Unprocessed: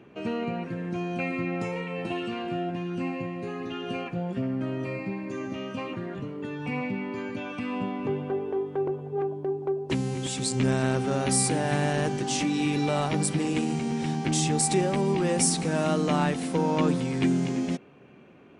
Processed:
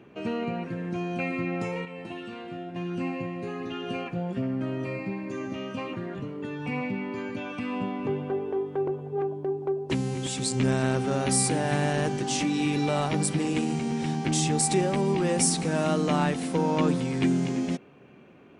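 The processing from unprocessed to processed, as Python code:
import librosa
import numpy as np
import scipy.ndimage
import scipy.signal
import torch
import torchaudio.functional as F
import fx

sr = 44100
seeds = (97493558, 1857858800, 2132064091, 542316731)

y = fx.comb_fb(x, sr, f0_hz=52.0, decay_s=0.46, harmonics='all', damping=0.0, mix_pct=70, at=(1.85, 2.76))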